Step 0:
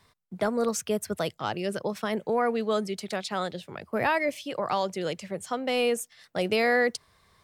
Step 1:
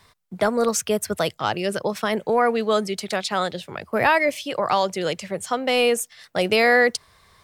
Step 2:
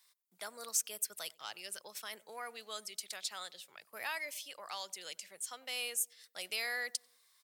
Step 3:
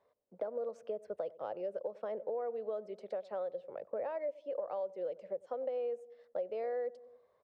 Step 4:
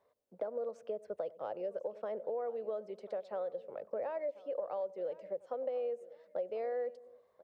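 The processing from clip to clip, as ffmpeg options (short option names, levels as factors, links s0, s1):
-af "equalizer=f=220:t=o:w=2.4:g=-4,volume=2.51"
-filter_complex "[0:a]aderivative,asplit=2[s0][s1];[s1]adelay=94,lowpass=f=970:p=1,volume=0.0891,asplit=2[s2][s3];[s3]adelay=94,lowpass=f=970:p=1,volume=0.5,asplit=2[s4][s5];[s5]adelay=94,lowpass=f=970:p=1,volume=0.5,asplit=2[s6][s7];[s7]adelay=94,lowpass=f=970:p=1,volume=0.5[s8];[s0][s2][s4][s6][s8]amix=inputs=5:normalize=0,volume=0.447"
-af "lowpass=f=540:t=q:w=6.4,acompressor=threshold=0.00398:ratio=5,volume=4.22"
-af "aecho=1:1:1041|2082:0.106|0.0297"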